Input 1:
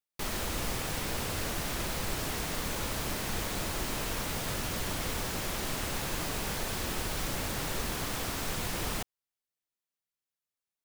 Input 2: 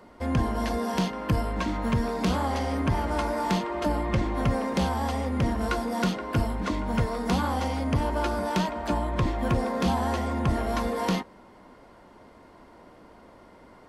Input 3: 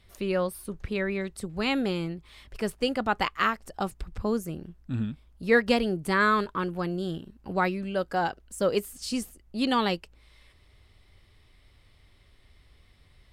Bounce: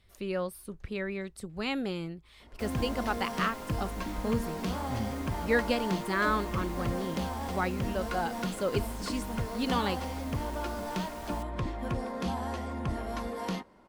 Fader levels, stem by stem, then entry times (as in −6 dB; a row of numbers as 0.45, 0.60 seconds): −14.0, −8.0, −5.5 decibels; 2.40, 2.40, 0.00 seconds